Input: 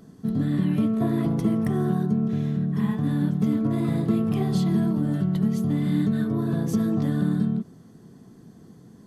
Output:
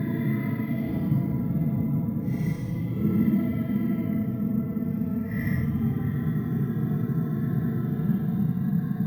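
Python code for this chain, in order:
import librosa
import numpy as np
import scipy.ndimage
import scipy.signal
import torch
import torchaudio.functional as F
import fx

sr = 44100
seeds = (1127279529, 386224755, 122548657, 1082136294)

y = fx.low_shelf(x, sr, hz=210.0, db=10.5)
y = fx.paulstretch(y, sr, seeds[0], factor=11.0, window_s=0.05, from_s=1.17)
y = fx.peak_eq(y, sr, hz=2000.0, db=12.5, octaves=0.47)
y = fx.notch_comb(y, sr, f0_hz=370.0)
y = np.repeat(scipy.signal.resample_poly(y, 1, 3), 3)[:len(y)]
y = y * 10.0 ** (-8.0 / 20.0)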